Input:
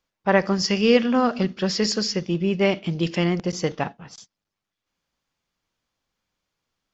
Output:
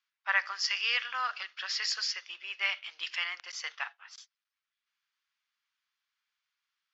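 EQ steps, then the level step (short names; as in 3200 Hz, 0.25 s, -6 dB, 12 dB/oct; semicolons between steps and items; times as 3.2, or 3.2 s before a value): HPF 1300 Hz 24 dB/oct; air absorption 120 m; 0.0 dB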